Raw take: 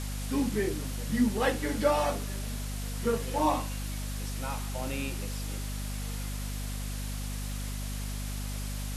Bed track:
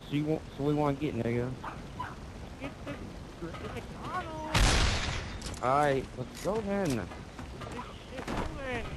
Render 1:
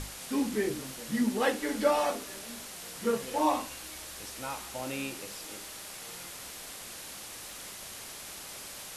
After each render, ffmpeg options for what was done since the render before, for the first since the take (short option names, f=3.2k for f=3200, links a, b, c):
-af "bandreject=f=50:t=h:w=6,bandreject=f=100:t=h:w=6,bandreject=f=150:t=h:w=6,bandreject=f=200:t=h:w=6,bandreject=f=250:t=h:w=6"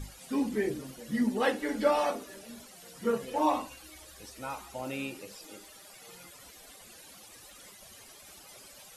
-af "afftdn=nr=14:nf=-44"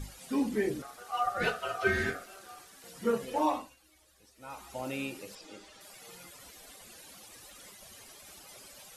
-filter_complex "[0:a]asettb=1/sr,asplit=3[a][b][c];[a]atrim=end=0.824[d];[b]atrim=start=0.82:end=2.84,asetpts=PTS-STARTPTS,afade=t=in:d=0.004:c=qsin,afade=t=out:st=2.016:d=0.004:c=qsin,aeval=exprs='val(0)*sin(2*PI*970*n/s)':c=same[e];[c]atrim=start=2.836[f];[d][e]acrossfade=d=0.004:c1=hsin:c2=qsin[g];[g][f]acrossfade=d=0.004:c1=qsin:c2=hsin,asettb=1/sr,asplit=3[h][i][j];[h]atrim=end=5.354[k];[i]atrim=start=5.35:end=5.81,asetpts=PTS-STARTPTS,afade=t=in:d=0.004:c=qsin,afade=t=out:st=0.456:d=0.004:c=qsin,lowpass=5.9k[l];[j]atrim=start=5.806[m];[k][l]acrossfade=d=0.004:c1=hsin:c2=qsin[n];[n][m]acrossfade=d=0.004:c1=qsin:c2=hsin,asplit=3[o][p][q];[o]atrim=end=3.76,asetpts=PTS-STARTPTS,afade=t=out:st=3.37:d=0.39:silence=0.199526[r];[p]atrim=start=3.76:end=4.37,asetpts=PTS-STARTPTS,volume=-14dB[s];[q]atrim=start=4.37,asetpts=PTS-STARTPTS,afade=t=in:d=0.39:silence=0.199526[t];[r][s][t]concat=n=3:v=0:a=1"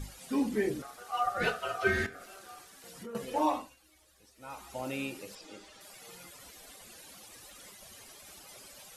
-filter_complex "[0:a]asettb=1/sr,asplit=3[a][b][c];[a]atrim=end=2.064[d];[b]atrim=start=2.06:end=3.15,asetpts=PTS-STARTPTS,afade=t=in:d=0.004:c=qsin,afade=t=out:st=1.086:d=0.004:c=qsin,acompressor=threshold=-42dB:ratio=5:attack=3.2:release=140:knee=1:detection=peak[e];[c]atrim=start=3.146[f];[d][e]acrossfade=d=0.004:c1=hsin:c2=qsin[g];[g][f]acrossfade=d=0.004:c1=qsin:c2=hsin"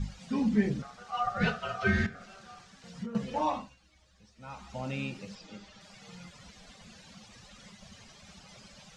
-af "lowpass=f=6.4k:w=0.5412,lowpass=f=6.4k:w=1.3066,lowshelf=f=250:t=q:w=3:g=7"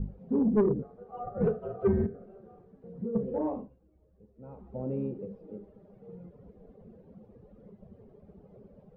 -af "lowpass=f=430:t=q:w=4.9,asoftclip=type=tanh:threshold=-17dB"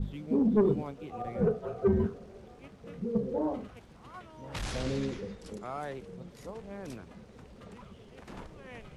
-filter_complex "[1:a]volume=-12dB[a];[0:a][a]amix=inputs=2:normalize=0"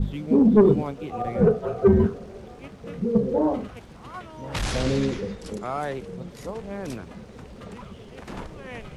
-af "volume=9dB"